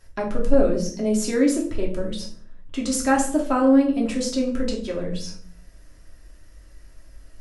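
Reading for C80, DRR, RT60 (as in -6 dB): 12.5 dB, -2.0 dB, 0.55 s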